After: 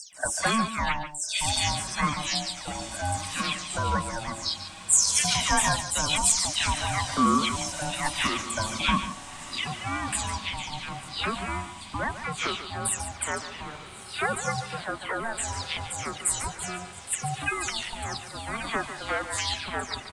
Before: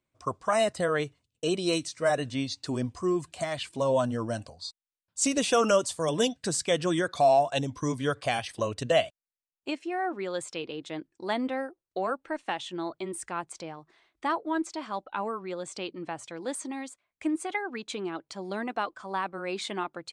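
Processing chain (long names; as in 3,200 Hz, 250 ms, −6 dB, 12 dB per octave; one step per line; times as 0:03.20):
every frequency bin delayed by itself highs early, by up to 283 ms
in parallel at −1 dB: downward compressor, threshold −37 dBFS, peak gain reduction 18 dB
on the sum: spectral tilt +3 dB per octave
single-tap delay 144 ms −11.5 dB
ring modulation 450 Hz
on a send: feedback delay with all-pass diffusion 1,362 ms, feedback 49%, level −14 dB
on the sum: level +2.5 dB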